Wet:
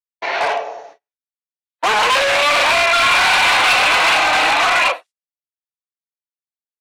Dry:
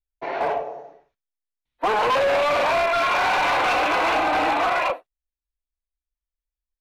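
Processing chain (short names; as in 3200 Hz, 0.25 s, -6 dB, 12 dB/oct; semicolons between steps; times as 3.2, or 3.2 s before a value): gate -45 dBFS, range -34 dB; weighting filter ITU-R 468; soft clip -16 dBFS, distortion -13 dB; gain +8 dB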